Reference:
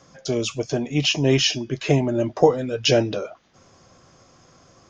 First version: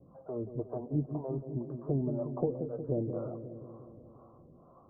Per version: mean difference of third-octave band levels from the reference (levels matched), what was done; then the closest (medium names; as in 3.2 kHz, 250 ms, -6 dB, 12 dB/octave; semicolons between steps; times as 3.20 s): 12.0 dB: steep low-pass 1.2 kHz 72 dB/octave; compression 2:1, threshold -32 dBFS, peak gain reduction 12.5 dB; harmonic tremolo 2 Hz, depth 100%, crossover 490 Hz; on a send: feedback echo behind a low-pass 180 ms, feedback 67%, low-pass 470 Hz, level -6.5 dB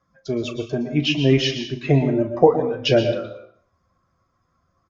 6.0 dB: expander on every frequency bin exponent 1.5; distance through air 190 m; doubling 37 ms -12.5 dB; plate-style reverb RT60 0.53 s, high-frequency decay 0.95×, pre-delay 105 ms, DRR 8 dB; trim +3.5 dB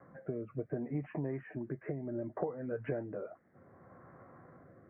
8.0 dB: steep low-pass 2 kHz 72 dB/octave; compression 16:1, threshold -31 dBFS, peak gain reduction 22.5 dB; rotary cabinet horn 0.65 Hz; high-pass 93 Hz; trim -1 dB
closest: second